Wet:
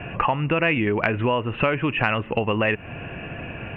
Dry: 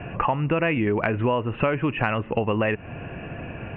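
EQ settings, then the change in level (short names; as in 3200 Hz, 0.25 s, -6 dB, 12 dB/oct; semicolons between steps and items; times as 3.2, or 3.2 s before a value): high shelf 2700 Hz +12 dB; 0.0 dB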